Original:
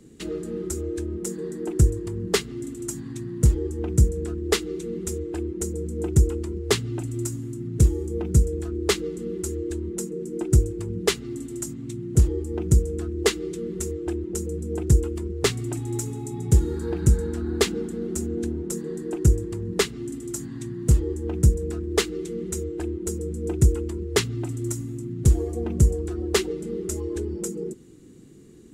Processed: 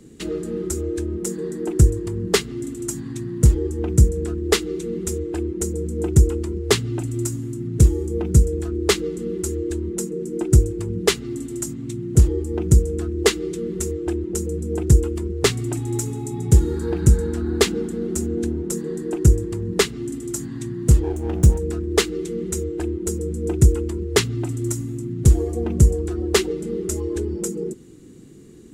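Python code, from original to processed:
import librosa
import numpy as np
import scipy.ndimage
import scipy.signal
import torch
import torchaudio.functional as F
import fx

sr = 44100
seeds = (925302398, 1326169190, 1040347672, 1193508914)

y = fx.lower_of_two(x, sr, delay_ms=0.31, at=(21.02, 21.58), fade=0.02)
y = y * 10.0 ** (4.0 / 20.0)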